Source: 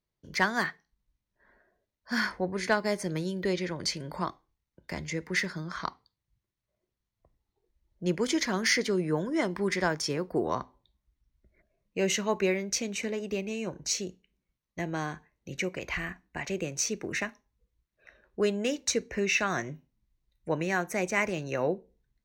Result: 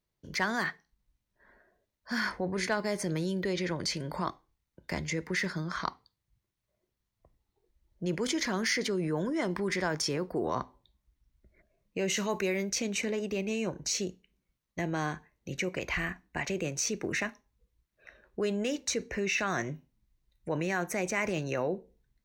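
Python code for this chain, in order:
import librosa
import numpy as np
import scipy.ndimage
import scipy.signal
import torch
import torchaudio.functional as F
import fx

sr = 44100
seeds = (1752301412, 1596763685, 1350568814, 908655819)

p1 = fx.high_shelf(x, sr, hz=fx.line((12.16, 4500.0), (12.69, 8200.0)), db=11.5, at=(12.16, 12.69), fade=0.02)
p2 = fx.over_compress(p1, sr, threshold_db=-33.0, ratio=-1.0)
p3 = p1 + (p2 * librosa.db_to_amplitude(0.5))
y = p3 * librosa.db_to_amplitude(-6.0)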